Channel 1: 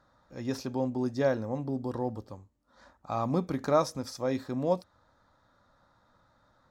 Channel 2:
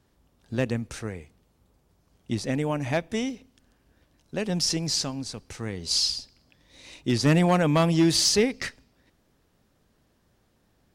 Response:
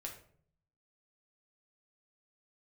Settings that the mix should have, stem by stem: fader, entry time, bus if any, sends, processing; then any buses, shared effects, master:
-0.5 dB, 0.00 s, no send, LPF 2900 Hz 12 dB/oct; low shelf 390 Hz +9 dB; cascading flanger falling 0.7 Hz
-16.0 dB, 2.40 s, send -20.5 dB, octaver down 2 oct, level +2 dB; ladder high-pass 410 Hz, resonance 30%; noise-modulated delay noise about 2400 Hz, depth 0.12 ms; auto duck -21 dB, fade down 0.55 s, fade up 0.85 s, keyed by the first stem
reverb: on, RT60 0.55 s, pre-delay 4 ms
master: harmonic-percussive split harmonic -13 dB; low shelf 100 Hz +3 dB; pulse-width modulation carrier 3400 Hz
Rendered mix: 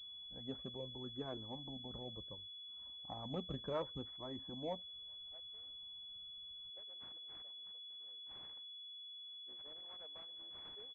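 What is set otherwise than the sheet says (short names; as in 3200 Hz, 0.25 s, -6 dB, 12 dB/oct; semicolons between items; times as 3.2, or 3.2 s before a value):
stem 1 -0.5 dB -> -8.5 dB; stem 2 -16.0 dB -> -26.0 dB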